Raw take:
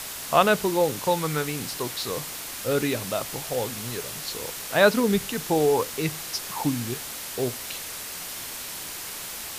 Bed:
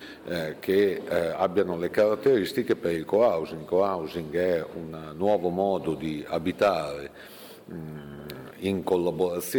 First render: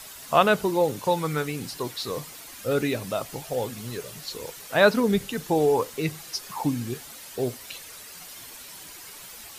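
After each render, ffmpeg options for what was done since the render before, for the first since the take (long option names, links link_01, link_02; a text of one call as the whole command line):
ffmpeg -i in.wav -af "afftdn=noise_reduction=10:noise_floor=-36" out.wav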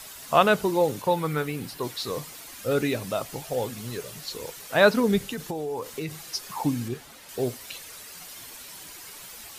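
ffmpeg -i in.wav -filter_complex "[0:a]asettb=1/sr,asplit=3[link_01][link_02][link_03];[link_01]atrim=end=1.024[link_04];[link_02]atrim=start=1.02:end=1.83,asetpts=PTS-STARTPTS,afade=type=in:duration=0.004:curve=qsin,afade=type=out:start_time=0.806:duration=0.004:curve=qsin,equalizer=frequency=6400:width_type=o:width=1.2:gain=-6.5[link_05];[link_03]atrim=start=1.826[link_06];[link_04][link_05]acrossfade=duration=0.004:curve1=hsin:curve2=qsin[link_07];[link_07][link_06]acrossfade=duration=0.004:curve1=qsin:curve2=hsin,asettb=1/sr,asplit=3[link_08][link_09][link_10];[link_08]atrim=end=5.214[link_11];[link_09]atrim=start=5.21:end=6.22,asetpts=PTS-STARTPTS,afade=type=in:duration=0.004:curve=qsin,afade=type=out:start_time=1.006:duration=0.004:curve=qsin,acompressor=threshold=-27dB:ratio=12:attack=3.2:release=140:knee=1:detection=peak[link_12];[link_10]atrim=start=6.216[link_13];[link_11][link_12]acrossfade=duration=0.004:curve1=hsin:curve2=qsin[link_14];[link_14][link_13]acrossfade=duration=0.004:curve1=qsin:curve2=hsin,asettb=1/sr,asplit=3[link_15][link_16][link_17];[link_15]atrim=end=6.884[link_18];[link_16]atrim=start=6.88:end=7.29,asetpts=PTS-STARTPTS,afade=type=in:duration=0.004:curve=qsin,afade=type=out:start_time=0.406:duration=0.004:curve=qsin,highshelf=frequency=4200:gain=-9[link_19];[link_17]atrim=start=7.286[link_20];[link_18][link_19]acrossfade=duration=0.004:curve1=hsin:curve2=qsin[link_21];[link_21][link_20]acrossfade=duration=0.004:curve1=qsin:curve2=hsin" out.wav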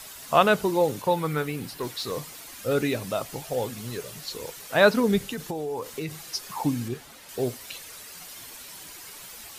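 ffmpeg -i in.wav -filter_complex "[0:a]asettb=1/sr,asplit=3[link_01][link_02][link_03];[link_01]atrim=end=1.564[link_04];[link_02]atrim=start=1.56:end=2.12,asetpts=PTS-STARTPTS,afade=type=in:duration=0.004:curve=qsin,afade=type=out:start_time=0.556:duration=0.004:curve=qsin,volume=24.5dB,asoftclip=hard,volume=-24.5dB[link_05];[link_03]atrim=start=2.116[link_06];[link_04][link_05]acrossfade=duration=0.004:curve1=hsin:curve2=qsin[link_07];[link_07][link_06]acrossfade=duration=0.004:curve1=qsin:curve2=hsin" out.wav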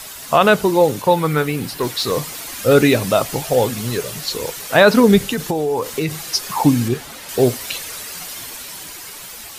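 ffmpeg -i in.wav -af "dynaudnorm=framelen=480:gausssize=7:maxgain=5dB,alimiter=level_in=8.5dB:limit=-1dB:release=50:level=0:latency=1" out.wav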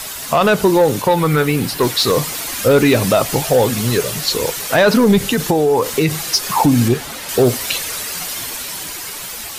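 ffmpeg -i in.wav -af "acontrast=56,alimiter=limit=-5dB:level=0:latency=1:release=113" out.wav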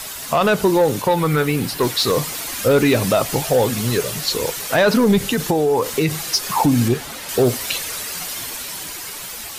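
ffmpeg -i in.wav -af "volume=-3dB" out.wav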